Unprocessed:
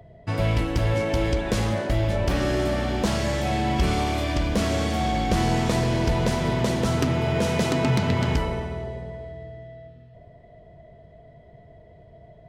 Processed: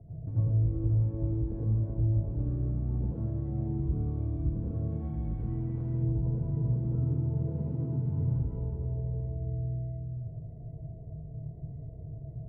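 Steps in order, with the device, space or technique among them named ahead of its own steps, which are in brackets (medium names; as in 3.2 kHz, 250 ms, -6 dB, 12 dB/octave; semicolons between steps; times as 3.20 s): 4.91–5.94 s: graphic EQ 125/500/2000/8000 Hz -5/-5/+9/+11 dB; television next door (compression 5:1, threshold -37 dBFS, peak gain reduction 17.5 dB; low-pass 250 Hz 12 dB/octave; reverberation RT60 0.40 s, pre-delay 80 ms, DRR -7 dB)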